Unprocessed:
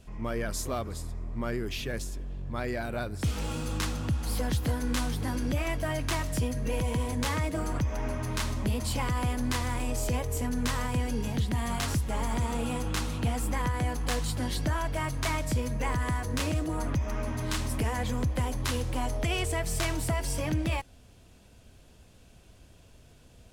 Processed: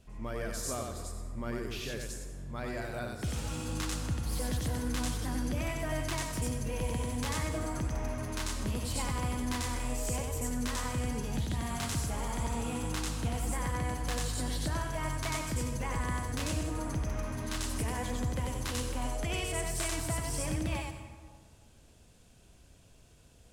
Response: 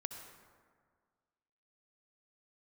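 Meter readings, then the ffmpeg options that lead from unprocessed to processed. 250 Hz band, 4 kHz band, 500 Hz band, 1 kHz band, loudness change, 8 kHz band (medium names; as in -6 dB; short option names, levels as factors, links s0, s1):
-4.0 dB, -3.0 dB, -4.0 dB, -4.0 dB, -3.5 dB, 0.0 dB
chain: -filter_complex "[0:a]asplit=2[s0][s1];[s1]equalizer=f=7900:t=o:w=1.4:g=9.5[s2];[1:a]atrim=start_sample=2205,adelay=93[s3];[s2][s3]afir=irnorm=-1:irlink=0,volume=0.841[s4];[s0][s4]amix=inputs=2:normalize=0,volume=0.501"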